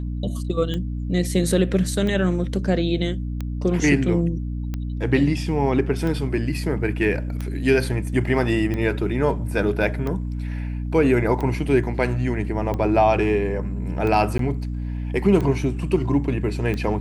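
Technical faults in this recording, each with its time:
mains hum 60 Hz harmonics 5 −27 dBFS
scratch tick 45 rpm −16 dBFS
0:14.38–0:14.39: drop-out 13 ms

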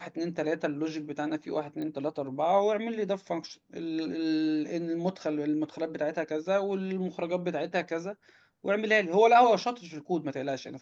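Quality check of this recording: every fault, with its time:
0:01.82: click −27 dBFS

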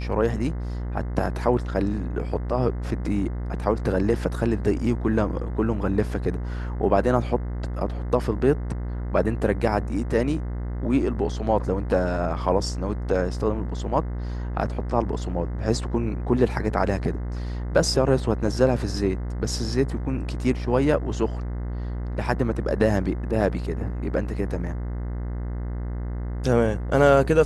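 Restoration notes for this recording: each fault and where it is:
mains buzz 60 Hz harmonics 35 −29 dBFS

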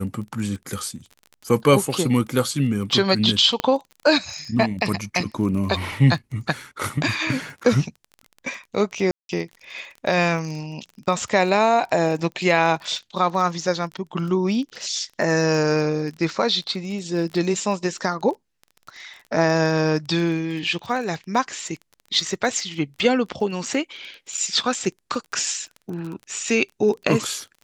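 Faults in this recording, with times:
surface crackle 22 per second −31 dBFS
0:03.60: click −7 dBFS
0:09.11–0:09.29: drop-out 182 ms

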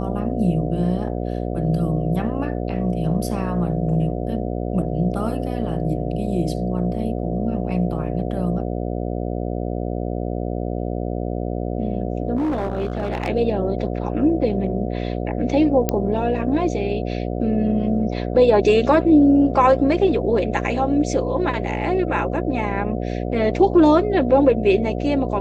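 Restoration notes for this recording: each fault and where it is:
mains buzz 60 Hz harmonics 12 −25 dBFS
0:12.36–0:13.29: clipping −18.5 dBFS
0:15.89: click −5 dBFS

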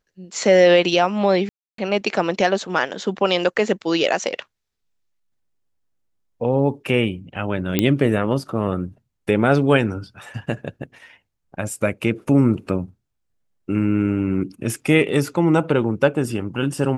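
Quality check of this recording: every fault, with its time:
0:01.49–0:01.78: drop-out 293 ms
0:07.79: click −3 dBFS

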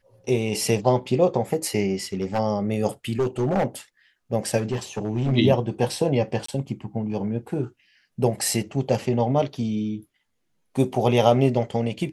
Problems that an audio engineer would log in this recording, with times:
0:02.13–0:02.40: clipping −18.5 dBFS
0:03.09–0:03.66: clipping −17.5 dBFS
0:04.57–0:05.33: clipping −19 dBFS
0:06.46–0:06.48: drop-out 24 ms

